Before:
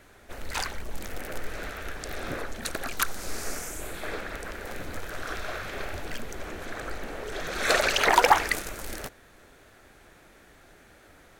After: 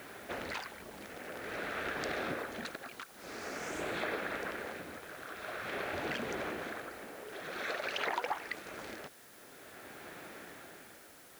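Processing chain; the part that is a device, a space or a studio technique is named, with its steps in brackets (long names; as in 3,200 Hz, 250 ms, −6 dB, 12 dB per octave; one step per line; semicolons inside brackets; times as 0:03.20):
medium wave at night (band-pass filter 160–3,800 Hz; downward compressor 8 to 1, threshold −40 dBFS, peak gain reduction 26 dB; amplitude tremolo 0.49 Hz, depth 72%; steady tone 10,000 Hz −75 dBFS; white noise bed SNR 18 dB)
level +7 dB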